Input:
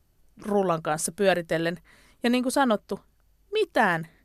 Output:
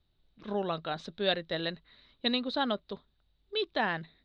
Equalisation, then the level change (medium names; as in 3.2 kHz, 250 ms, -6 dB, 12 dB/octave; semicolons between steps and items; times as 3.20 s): resonant low-pass 3.8 kHz, resonance Q 13; distance through air 150 m; -8.5 dB